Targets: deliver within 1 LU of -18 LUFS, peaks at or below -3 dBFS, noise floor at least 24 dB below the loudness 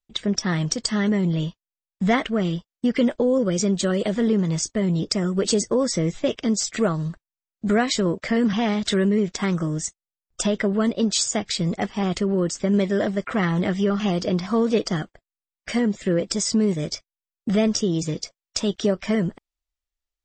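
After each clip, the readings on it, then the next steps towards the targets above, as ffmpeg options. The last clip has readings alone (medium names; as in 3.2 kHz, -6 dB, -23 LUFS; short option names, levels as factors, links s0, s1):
loudness -23.0 LUFS; peak level -8.5 dBFS; loudness target -18.0 LUFS
-> -af "volume=1.78"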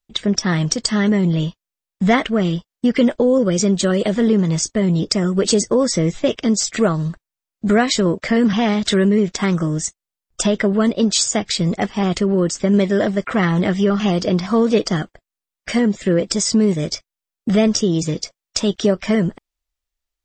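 loudness -18.0 LUFS; peak level -3.5 dBFS; noise floor -88 dBFS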